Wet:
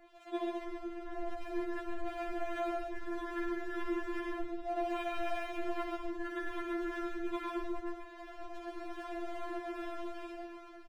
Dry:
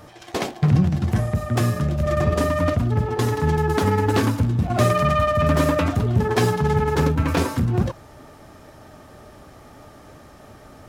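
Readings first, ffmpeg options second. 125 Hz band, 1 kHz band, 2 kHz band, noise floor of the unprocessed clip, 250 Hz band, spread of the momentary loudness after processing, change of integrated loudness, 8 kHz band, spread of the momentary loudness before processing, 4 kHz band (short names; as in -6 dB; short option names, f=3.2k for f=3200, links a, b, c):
under -40 dB, -15.0 dB, -13.5 dB, -46 dBFS, -15.5 dB, 8 LU, -19.0 dB, under -25 dB, 4 LU, -18.0 dB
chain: -filter_complex "[0:a]equalizer=f=3k:w=2.3:g=-7,dynaudnorm=f=140:g=13:m=15.5dB,alimiter=limit=-8.5dB:level=0:latency=1:release=153,acompressor=threshold=-27dB:ratio=2,afftfilt=real='hypot(re,im)*cos(2*PI*random(0))':imag='hypot(re,im)*sin(2*PI*random(1))':win_size=512:overlap=0.75,aresample=8000,asoftclip=type=tanh:threshold=-29.5dB,aresample=44100,acrossover=split=800[a][b];[a]aeval=exprs='val(0)*(1-0.5/2+0.5/2*cos(2*PI*2.5*n/s))':c=same[c];[b]aeval=exprs='val(0)*(1-0.5/2-0.5/2*cos(2*PI*2.5*n/s))':c=same[d];[c][d]amix=inputs=2:normalize=0,aeval=exprs='sgn(val(0))*max(abs(val(0))-0.00178,0)':c=same,aecho=1:1:56|99|129|134|196|663:0.237|0.447|0.141|0.596|0.299|0.106,afftfilt=real='re*4*eq(mod(b,16),0)':imag='im*4*eq(mod(b,16),0)':win_size=2048:overlap=0.75,volume=3dB"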